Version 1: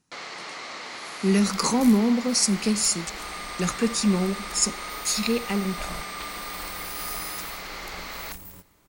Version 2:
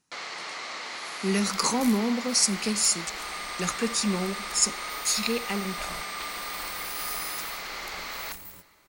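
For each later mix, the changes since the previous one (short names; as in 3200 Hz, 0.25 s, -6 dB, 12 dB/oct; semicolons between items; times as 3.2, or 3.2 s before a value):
first sound: send +9.0 dB; master: add low shelf 410 Hz -7.5 dB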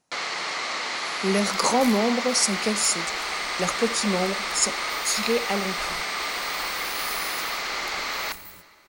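speech: add bell 630 Hz +13.5 dB 0.88 oct; first sound +7.5 dB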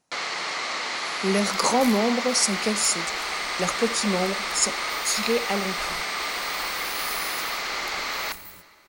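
second sound: add bell 12000 Hz +2.5 dB 0.33 oct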